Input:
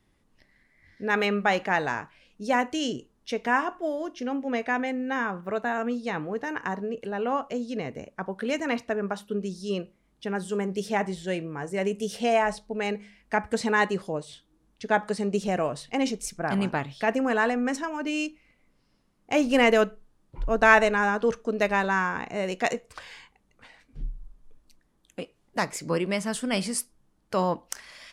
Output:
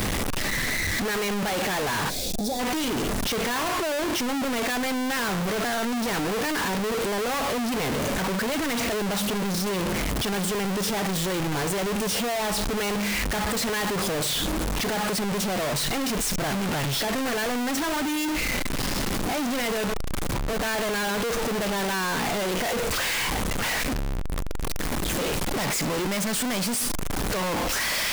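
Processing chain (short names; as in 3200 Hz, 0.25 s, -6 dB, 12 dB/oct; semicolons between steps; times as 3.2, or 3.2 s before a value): infinite clipping; spectral gain 2.09–2.59, 820–3300 Hz -16 dB; gain +2 dB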